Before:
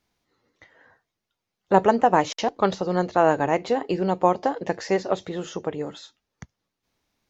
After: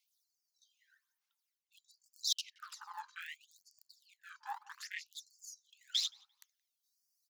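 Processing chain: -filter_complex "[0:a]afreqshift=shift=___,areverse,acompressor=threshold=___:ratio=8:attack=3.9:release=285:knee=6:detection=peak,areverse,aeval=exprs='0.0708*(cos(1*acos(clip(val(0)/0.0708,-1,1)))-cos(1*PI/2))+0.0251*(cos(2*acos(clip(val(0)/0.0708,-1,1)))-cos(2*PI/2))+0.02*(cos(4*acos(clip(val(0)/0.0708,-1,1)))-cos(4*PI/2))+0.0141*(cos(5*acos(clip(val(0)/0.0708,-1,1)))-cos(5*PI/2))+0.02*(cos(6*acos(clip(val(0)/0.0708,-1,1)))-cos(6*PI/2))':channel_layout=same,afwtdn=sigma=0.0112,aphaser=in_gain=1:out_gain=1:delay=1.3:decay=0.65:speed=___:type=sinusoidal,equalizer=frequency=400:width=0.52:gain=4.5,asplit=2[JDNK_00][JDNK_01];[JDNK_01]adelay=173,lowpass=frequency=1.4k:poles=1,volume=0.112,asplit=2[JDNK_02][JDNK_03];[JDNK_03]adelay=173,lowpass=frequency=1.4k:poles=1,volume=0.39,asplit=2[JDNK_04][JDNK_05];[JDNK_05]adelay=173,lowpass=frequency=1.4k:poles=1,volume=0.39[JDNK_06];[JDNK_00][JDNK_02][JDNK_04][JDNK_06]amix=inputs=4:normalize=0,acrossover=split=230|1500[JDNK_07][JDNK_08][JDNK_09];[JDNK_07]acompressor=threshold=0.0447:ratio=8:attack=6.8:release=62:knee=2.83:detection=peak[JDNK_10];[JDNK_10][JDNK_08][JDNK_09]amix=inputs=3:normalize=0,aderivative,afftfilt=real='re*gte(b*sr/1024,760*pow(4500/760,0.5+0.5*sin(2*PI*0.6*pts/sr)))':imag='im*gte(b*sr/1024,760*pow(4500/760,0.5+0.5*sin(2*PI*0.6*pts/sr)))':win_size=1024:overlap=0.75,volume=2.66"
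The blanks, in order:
-33, 0.0251, 0.8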